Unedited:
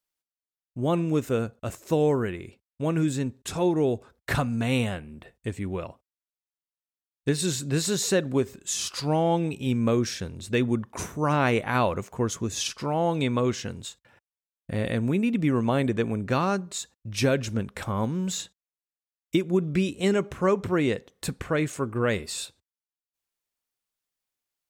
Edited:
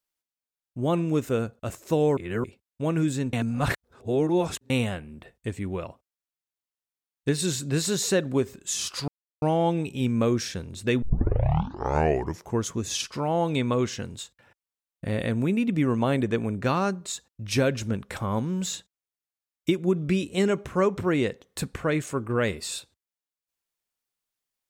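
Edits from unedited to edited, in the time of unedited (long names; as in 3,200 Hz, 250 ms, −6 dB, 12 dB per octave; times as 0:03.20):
0:02.17–0:02.44: reverse
0:03.33–0:04.70: reverse
0:09.08: splice in silence 0.34 s
0:10.68: tape start 1.59 s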